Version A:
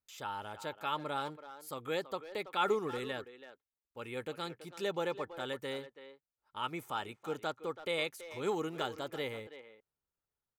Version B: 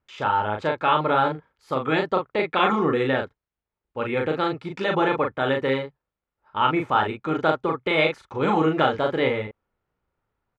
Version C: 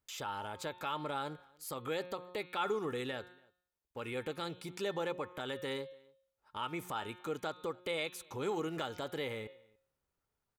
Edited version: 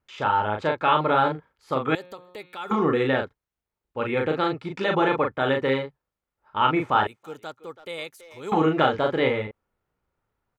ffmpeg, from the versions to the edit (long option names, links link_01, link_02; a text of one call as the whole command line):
ffmpeg -i take0.wav -i take1.wav -i take2.wav -filter_complex "[1:a]asplit=3[link_01][link_02][link_03];[link_01]atrim=end=1.952[link_04];[2:a]atrim=start=1.948:end=2.712[link_05];[link_02]atrim=start=2.708:end=7.072[link_06];[0:a]atrim=start=7.068:end=8.522[link_07];[link_03]atrim=start=8.518[link_08];[link_04][link_05]acrossfade=duration=0.004:curve1=hsin:curve2=hsin[link_09];[link_09][link_06]acrossfade=duration=0.004:curve1=hsin:curve2=hsin[link_10];[link_10][link_07]acrossfade=duration=0.004:curve1=hsin:curve2=hsin[link_11];[link_11][link_08]acrossfade=duration=0.004:curve1=hsin:curve2=hsin" out.wav